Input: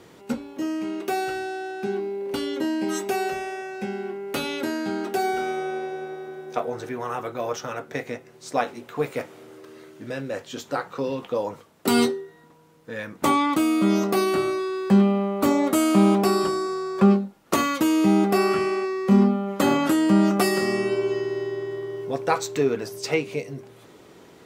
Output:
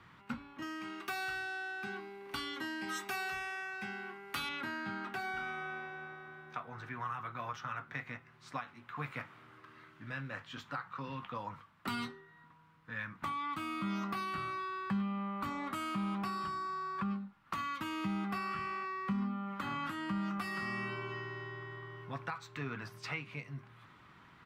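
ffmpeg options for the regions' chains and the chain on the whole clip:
ffmpeg -i in.wav -filter_complex "[0:a]asettb=1/sr,asplit=3[link_01][link_02][link_03];[link_01]atrim=end=0.624[link_04];[link_02]atrim=start=0.62:end=4.49,asetpts=PTS-STARTPTS,afade=type=in:duration=0.004:curve=qsin,afade=type=out:start_time=3.866:duration=0.004:curve=qsin,bass=frequency=250:gain=-3,treble=frequency=4000:gain=11,aecho=1:1:2.6:0.31,atrim=end_sample=170667[link_05];[link_03]atrim=start=4.486[link_06];[link_04][link_05]acrossfade=duration=0.004:curve1=hsin:curve2=qsin[link_07];[link_07][link_06]acrossfade=duration=0.004:curve1=qsin:curve2=hsin,firequalizer=gain_entry='entry(120,0);entry(430,-20);entry(1100,4);entry(6500,-17)':delay=0.05:min_phase=1,alimiter=limit=-19dB:level=0:latency=1:release=443,acrossover=split=170|3000[link_08][link_09][link_10];[link_09]acompressor=threshold=-32dB:ratio=6[link_11];[link_08][link_11][link_10]amix=inputs=3:normalize=0,volume=-4.5dB" out.wav

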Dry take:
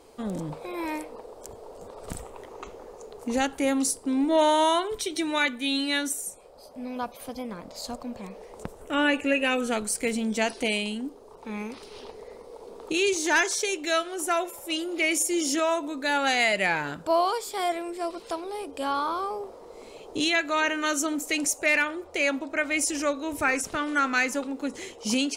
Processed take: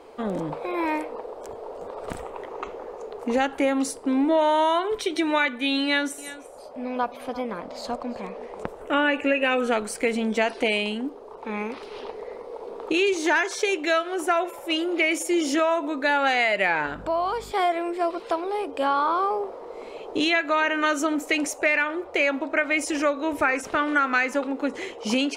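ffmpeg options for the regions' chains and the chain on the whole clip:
ffmpeg -i in.wav -filter_complex "[0:a]asettb=1/sr,asplit=3[link_01][link_02][link_03];[link_01]atrim=end=5.844[link_04];[link_02]atrim=start=5.84:end=8.64,asetpts=PTS-STARTPTS,afade=type=in:duration=0.004:curve=qsin,afade=type=out:start_time=2.796:duration=0.004:curve=qsin,lowpass=12000,aecho=1:1:341:0.126,atrim=end_sample=123480[link_05];[link_03]atrim=start=8.636[link_06];[link_04][link_05]acrossfade=duration=0.004:curve1=hsin:curve2=qsin[link_07];[link_07][link_06]acrossfade=duration=0.004:curve1=qsin:curve2=hsin,asettb=1/sr,asplit=3[link_08][link_09][link_10];[link_08]atrim=end=16.864[link_11];[link_09]atrim=start=16.86:end=17.52,asetpts=PTS-STARTPTS,afade=type=in:duration=0.004:curve=qsin,afade=type=out:start_time=0.656:duration=0.004:curve=qsin,aeval=exprs='val(0)+0.0112*(sin(2*PI*50*n/s)+sin(2*PI*2*50*n/s)/2+sin(2*PI*3*50*n/s)/3+sin(2*PI*4*50*n/s)/4+sin(2*PI*5*50*n/s)/5)':channel_layout=same,acompressor=threshold=-35dB:ratio=2:attack=3.2:release=140:knee=1:detection=peak[link_12];[link_10]atrim=start=17.516[link_13];[link_11][link_12]acrossfade=duration=0.004:curve1=hsin:curve2=qsin[link_14];[link_14][link_13]acrossfade=duration=0.004:curve1=qsin:curve2=hsin,bass=frequency=250:gain=-10,treble=frequency=4000:gain=-15,acompressor=threshold=-26dB:ratio=6,volume=8dB" out.wav

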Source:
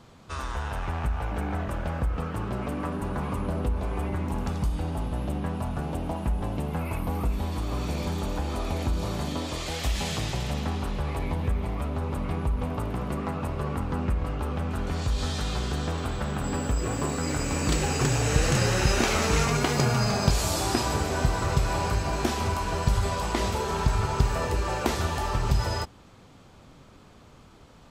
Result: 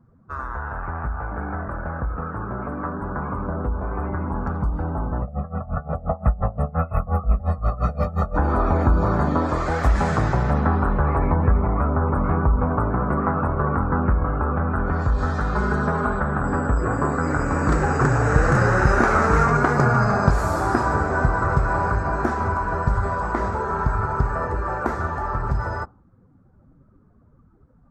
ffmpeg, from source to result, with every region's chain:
ffmpeg -i in.wav -filter_complex "[0:a]asettb=1/sr,asplit=3[link_01][link_02][link_03];[link_01]atrim=end=5.224[link_04];[link_02]atrim=start=5.22:end=8.36,asetpts=PTS-STARTPTS,afade=type=in:duration=0.004:curve=qsin,afade=type=out:start_time=3.136:duration=0.004:curve=qsin,bandreject=frequency=370:width=5.6,aecho=1:1:1.6:0.89,atrim=end_sample=138474,aeval=exprs='val(0)*pow(10,-19*(0.5-0.5*cos(2*PI*5.7*n/s))/20)':channel_layout=same[link_05];[link_03]atrim=start=8.356[link_06];[link_04][link_05]acrossfade=duration=0.004:curve1=hsin:curve2=qsin[link_07];[link_07][link_06]acrossfade=duration=0.004:curve1=qsin:curve2=hsin,asettb=1/sr,asplit=3[link_08][link_09][link_10];[link_08]atrim=end=15.554[link_11];[link_09]atrim=start=15.55:end=16.2,asetpts=PTS-STARTPTS,afade=type=in:duration=0.004:curve=qsin,afade=type=out:start_time=0.646:duration=0.004:curve=qsin,highpass=45,bandreject=frequency=7500:width=28,aecho=1:1:4.8:0.86,atrim=end_sample=28665[link_12];[link_10]atrim=start=16.196[link_13];[link_11][link_12]acrossfade=duration=0.004:curve1=hsin:curve2=qsin[link_14];[link_14][link_13]acrossfade=duration=0.004:curve1=qsin:curve2=hsin,afftdn=noise_reduction=19:noise_floor=-45,highshelf=frequency=2100:width_type=q:width=3:gain=-13,dynaudnorm=framelen=410:gausssize=31:maxgain=11.5dB" out.wav

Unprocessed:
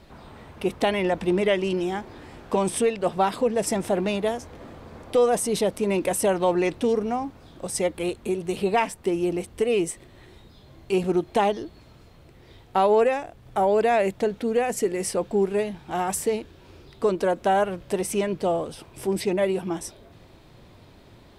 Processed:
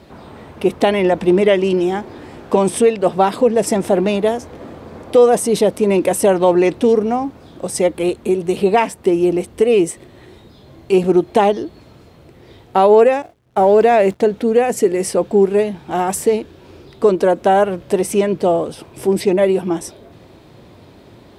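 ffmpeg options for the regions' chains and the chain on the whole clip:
ffmpeg -i in.wav -filter_complex "[0:a]asettb=1/sr,asplit=3[link_01][link_02][link_03];[link_01]atrim=end=13.224[link_04];[link_02]atrim=start=13.22:end=14.2,asetpts=PTS-STARTPTS,afade=type=in:duration=0.004:curve=qsin,afade=type=out:start_time=0.976:duration=0.004:curve=qsin,aeval=exprs='val(0)+0.5*0.0106*sgn(val(0))':channel_layout=same,highshelf=frequency=9200:gain=-5.5,agate=range=-33dB:threshold=-28dB:ratio=3:release=100:detection=peak[link_05];[link_03]atrim=start=14.196[link_06];[link_04][link_05]acrossfade=duration=0.004:curve1=hsin:curve2=qsin[link_07];[link_07][link_06]acrossfade=duration=0.004:curve1=qsin:curve2=hsin,highpass=56,equalizer=frequency=360:width_type=o:width=2.3:gain=5,volume=5dB" out.wav

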